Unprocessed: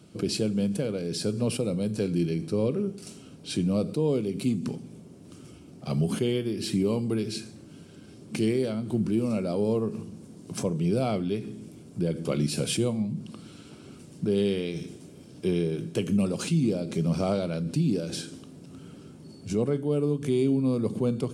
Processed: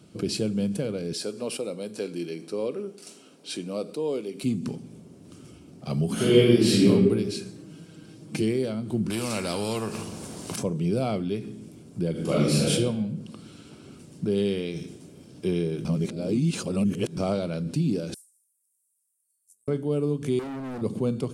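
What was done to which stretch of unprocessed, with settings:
1.13–4.44 s: high-pass 360 Hz
6.14–6.87 s: reverb throw, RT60 1.2 s, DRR -10 dB
7.46–8.42 s: comb 6.3 ms
9.10–10.56 s: spectrum-flattening compressor 2:1
12.11–12.70 s: reverb throw, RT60 0.96 s, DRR -5.5 dB
15.85–17.17 s: reverse
18.14–19.68 s: inverse Chebyshev high-pass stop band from 2.7 kHz, stop band 70 dB
20.39–20.82 s: overload inside the chain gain 33 dB

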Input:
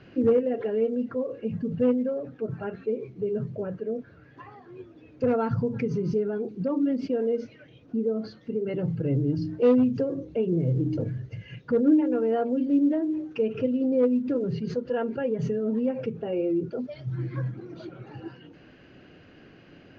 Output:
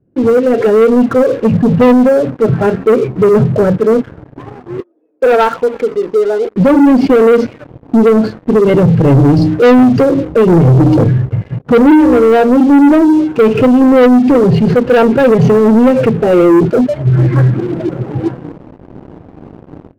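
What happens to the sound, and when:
4.80–6.56 s: Bessel high-pass 610 Hz, order 4
whole clip: level-controlled noise filter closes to 360 Hz, open at -21 dBFS; level rider gain up to 13 dB; waveshaping leveller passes 3

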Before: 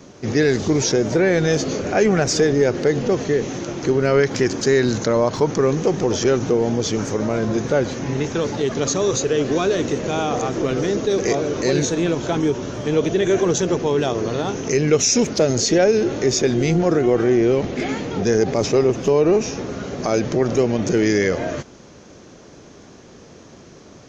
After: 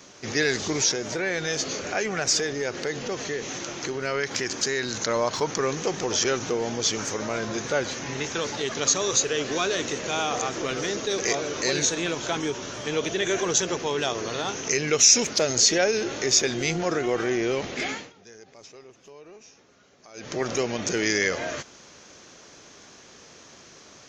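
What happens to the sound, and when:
0.81–5.08 s: compression 1.5:1, threshold -23 dBFS
17.86–20.41 s: dip -23 dB, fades 0.27 s
whole clip: tilt shelf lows -8 dB, about 740 Hz; trim -5 dB

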